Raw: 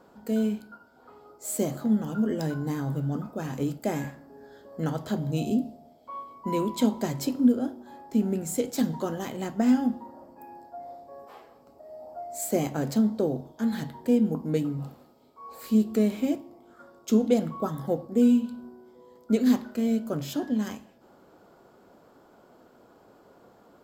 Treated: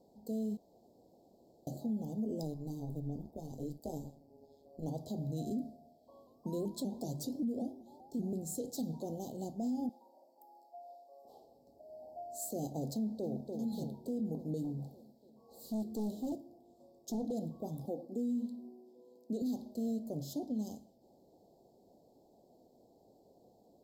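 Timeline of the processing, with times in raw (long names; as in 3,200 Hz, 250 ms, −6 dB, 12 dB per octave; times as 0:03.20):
0:00.57–0:01.67: fill with room tone
0:02.43–0:04.88: amplitude modulation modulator 150 Hz, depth 70%
0:06.27–0:08.33: pitch modulation by a square or saw wave saw up 5.2 Hz, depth 160 cents
0:09.89–0:11.25: high-pass filter 680 Hz
0:12.94–0:13.47: delay throw 290 ms, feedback 65%, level −9 dB
0:14.64–0:17.32: hard clipping −25.5 dBFS
0:17.85–0:19.42: low shelf with overshoot 170 Hz −11.5 dB, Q 1.5
whole clip: elliptic band-stop filter 760–4,100 Hz, stop band 50 dB; brickwall limiter −22 dBFS; level −7.5 dB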